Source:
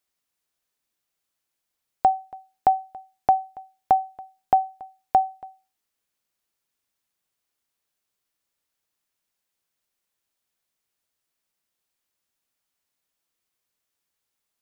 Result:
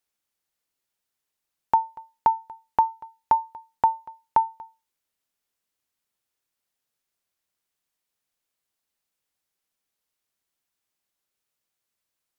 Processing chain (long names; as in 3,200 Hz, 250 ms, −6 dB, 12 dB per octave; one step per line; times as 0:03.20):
speed change +18%
level −1 dB